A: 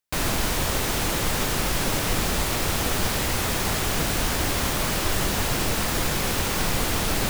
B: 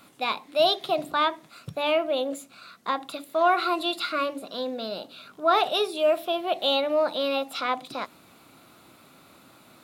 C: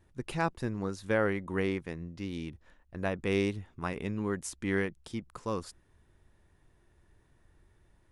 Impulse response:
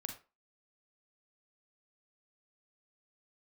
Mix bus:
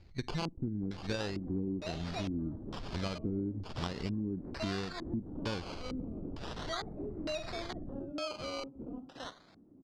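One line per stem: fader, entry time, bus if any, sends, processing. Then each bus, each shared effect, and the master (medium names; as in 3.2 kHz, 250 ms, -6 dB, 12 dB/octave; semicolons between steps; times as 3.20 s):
-14.5 dB, 0.70 s, bus A, send -10 dB, high-order bell 6.5 kHz +10 dB; spectral gate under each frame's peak -15 dB strong
-9.5 dB, 1.25 s, bus A, send -8 dB, band-stop 920 Hz
+0.5 dB, 0.00 s, no bus, send -16 dB, bass shelf 190 Hz +8 dB
bus A: 0.0 dB, compression 2.5:1, threshold -47 dBFS, peak gain reduction 14.5 dB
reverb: on, RT60 0.30 s, pre-delay 37 ms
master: decimation with a swept rate 19×, swing 60% 0.38 Hz; LFO low-pass square 1.1 Hz 290–4600 Hz; compression 6:1, threshold -33 dBFS, peak gain reduction 14.5 dB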